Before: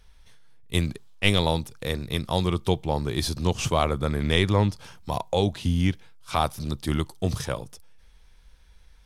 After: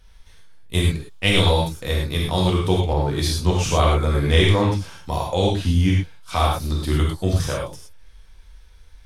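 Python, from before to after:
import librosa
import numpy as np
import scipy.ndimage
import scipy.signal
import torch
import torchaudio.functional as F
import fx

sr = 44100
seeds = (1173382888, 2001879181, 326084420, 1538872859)

y = fx.rev_gated(x, sr, seeds[0], gate_ms=140, shape='flat', drr_db=-3.0)
y = fx.band_widen(y, sr, depth_pct=40, at=(2.93, 3.69))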